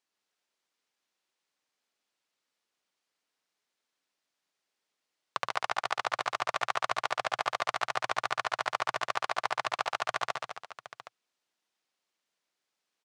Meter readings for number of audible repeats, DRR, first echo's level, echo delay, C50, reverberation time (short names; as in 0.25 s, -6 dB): 5, none, -13.5 dB, 74 ms, none, none